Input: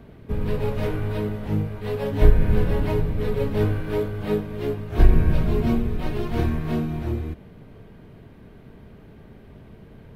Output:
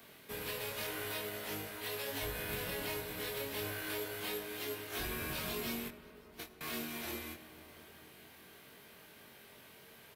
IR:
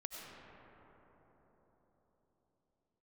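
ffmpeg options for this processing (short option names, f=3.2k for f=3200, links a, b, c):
-filter_complex "[0:a]aderivative,asettb=1/sr,asplit=3[a][b][c];[a]atrim=end=5.884[d];[b]atrim=start=5.88:end=6.61,asetpts=PTS-STARTPTS,afade=t=in:d=0.004:c=qsin,afade=t=out:st=0.726:d=0.004:c=qsin,agate=range=-29dB:threshold=-42dB:ratio=16:detection=peak[e];[c]atrim=start=6.606[f];[d][e]acrossfade=d=0.004:c1=hsin:c2=qsin[g];[g][f]acrossfade=d=0.004:c1=qsin:c2=hsin,acrossover=split=140[h][i];[i]alimiter=level_in=16dB:limit=-24dB:level=0:latency=1:release=157,volume=-16dB[j];[h][j]amix=inputs=2:normalize=0,asoftclip=type=tanh:threshold=-40dB,asplit=2[k][l];[l]adelay=22,volume=-3.5dB[m];[k][m]amix=inputs=2:normalize=0,asplit=2[n][o];[1:a]atrim=start_sample=2205[p];[o][p]afir=irnorm=-1:irlink=0,volume=-6.5dB[q];[n][q]amix=inputs=2:normalize=0,volume=9dB"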